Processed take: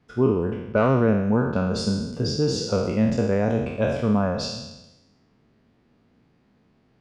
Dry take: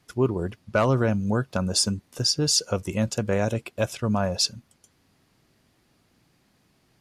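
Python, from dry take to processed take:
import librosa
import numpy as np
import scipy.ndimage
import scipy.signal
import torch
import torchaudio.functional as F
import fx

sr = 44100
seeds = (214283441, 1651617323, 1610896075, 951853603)

y = fx.spec_trails(x, sr, decay_s=1.0)
y = fx.spacing_loss(y, sr, db_at_10k=25)
y = fx.small_body(y, sr, hz=(230.0, 440.0), ring_ms=45, db=6)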